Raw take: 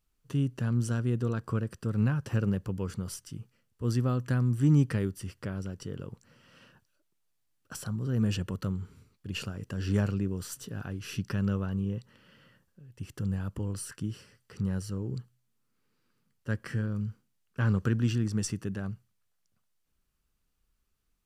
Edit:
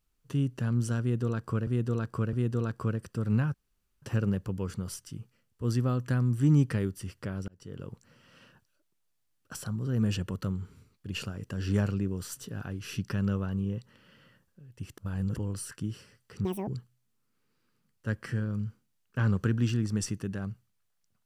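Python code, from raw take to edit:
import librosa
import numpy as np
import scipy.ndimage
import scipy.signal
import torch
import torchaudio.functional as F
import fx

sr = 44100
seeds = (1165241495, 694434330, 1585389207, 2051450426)

y = fx.edit(x, sr, fx.repeat(start_s=1.01, length_s=0.66, count=3),
    fx.insert_room_tone(at_s=2.22, length_s=0.48),
    fx.fade_in_span(start_s=5.68, length_s=0.38),
    fx.reverse_span(start_s=13.18, length_s=0.38),
    fx.speed_span(start_s=14.65, length_s=0.44, speed=1.96), tone=tone)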